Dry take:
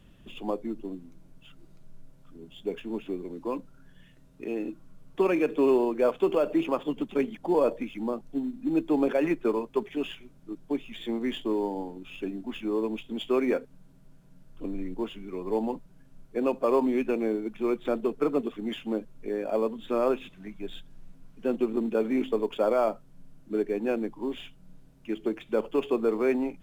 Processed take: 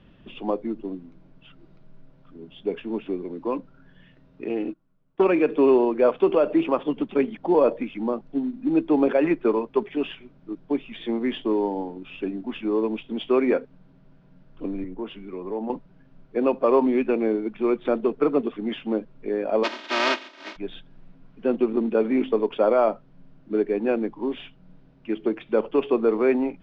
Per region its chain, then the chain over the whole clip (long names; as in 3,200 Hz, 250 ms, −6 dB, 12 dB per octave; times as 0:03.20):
0:04.49–0:05.24: noise gate −39 dBFS, range −18 dB + highs frequency-modulated by the lows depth 0.16 ms
0:14.84–0:15.70: high-shelf EQ 6,100 Hz −6.5 dB + downward compressor 2.5 to 1, threshold −33 dBFS + multiband upward and downward expander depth 40%
0:19.63–0:20.55: compressing power law on the bin magnitudes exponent 0.16 + high-pass filter 240 Hz 24 dB per octave + comb filter 3.2 ms, depth 94%
whole clip: Bessel low-pass filter 2,900 Hz, order 8; low-shelf EQ 100 Hz −7.5 dB; level +5.5 dB